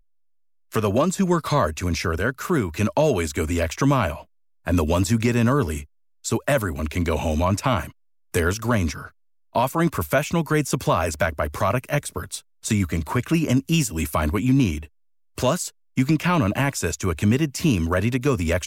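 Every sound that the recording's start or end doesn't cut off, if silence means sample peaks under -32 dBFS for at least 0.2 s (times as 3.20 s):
0.72–4.21 s
4.67–5.82 s
6.25–7.89 s
8.34–9.06 s
9.55–12.39 s
12.65–14.85 s
15.38–15.69 s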